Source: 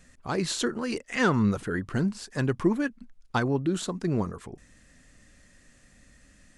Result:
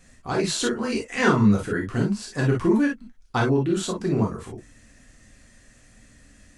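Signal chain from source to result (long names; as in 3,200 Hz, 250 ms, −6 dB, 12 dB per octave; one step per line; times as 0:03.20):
reverb whose tail is shaped and stops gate 80 ms flat, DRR −2 dB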